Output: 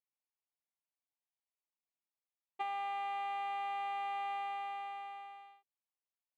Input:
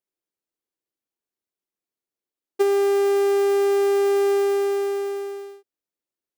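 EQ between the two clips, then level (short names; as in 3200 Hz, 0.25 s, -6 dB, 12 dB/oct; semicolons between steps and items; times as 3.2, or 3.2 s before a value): HPF 970 Hz 6 dB/oct; tape spacing loss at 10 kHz 34 dB; fixed phaser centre 1500 Hz, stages 6; +1.5 dB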